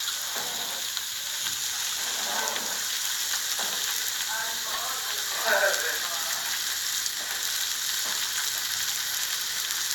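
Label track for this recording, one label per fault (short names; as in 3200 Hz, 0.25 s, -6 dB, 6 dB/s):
4.300000	5.070000	clipped -25 dBFS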